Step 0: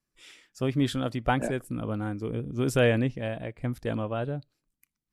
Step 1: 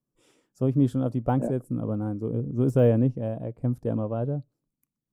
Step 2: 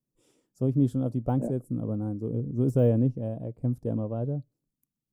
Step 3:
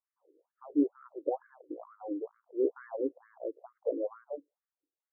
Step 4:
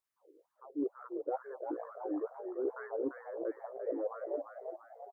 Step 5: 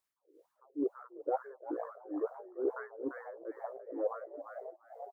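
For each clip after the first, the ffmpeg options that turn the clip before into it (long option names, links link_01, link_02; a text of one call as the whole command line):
ffmpeg -i in.wav -af "equalizer=frequency=125:width_type=o:width=1:gain=11,equalizer=frequency=250:width_type=o:width=1:gain=8,equalizer=frequency=500:width_type=o:width=1:gain=8,equalizer=frequency=1000:width_type=o:width=1:gain=5,equalizer=frequency=2000:width_type=o:width=1:gain=-11,equalizer=frequency=4000:width_type=o:width=1:gain=-8,deesser=0.8,volume=-7.5dB" out.wav
ffmpeg -i in.wav -af "equalizer=frequency=1700:width_type=o:width=2.4:gain=-9,volume=-1dB" out.wav
ffmpeg -i in.wav -af "afftfilt=real='re*between(b*sr/1024,370*pow(1600/370,0.5+0.5*sin(2*PI*2.2*pts/sr))/1.41,370*pow(1600/370,0.5+0.5*sin(2*PI*2.2*pts/sr))*1.41)':imag='im*between(b*sr/1024,370*pow(1600/370,0.5+0.5*sin(2*PI*2.2*pts/sr))/1.41,370*pow(1600/370,0.5+0.5*sin(2*PI*2.2*pts/sr))*1.41)':win_size=1024:overlap=0.75,volume=4.5dB" out.wav
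ffmpeg -i in.wav -filter_complex "[0:a]areverse,acompressor=threshold=-37dB:ratio=6,areverse,asplit=7[link_01][link_02][link_03][link_04][link_05][link_06][link_07];[link_02]adelay=344,afreqshift=61,volume=-6dB[link_08];[link_03]adelay=688,afreqshift=122,volume=-12.6dB[link_09];[link_04]adelay=1032,afreqshift=183,volume=-19.1dB[link_10];[link_05]adelay=1376,afreqshift=244,volume=-25.7dB[link_11];[link_06]adelay=1720,afreqshift=305,volume=-32.2dB[link_12];[link_07]adelay=2064,afreqshift=366,volume=-38.8dB[link_13];[link_01][link_08][link_09][link_10][link_11][link_12][link_13]amix=inputs=7:normalize=0,volume=4dB" out.wav
ffmpeg -i in.wav -af "tremolo=f=2.2:d=0.87,volume=4dB" out.wav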